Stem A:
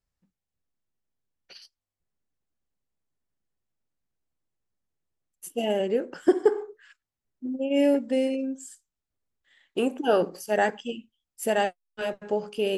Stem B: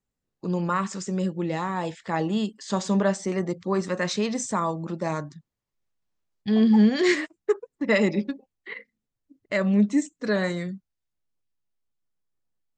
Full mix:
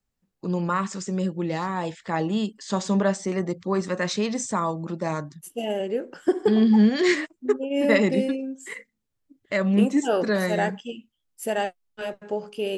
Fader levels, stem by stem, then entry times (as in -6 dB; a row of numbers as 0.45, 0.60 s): -1.5, +0.5 dB; 0.00, 0.00 s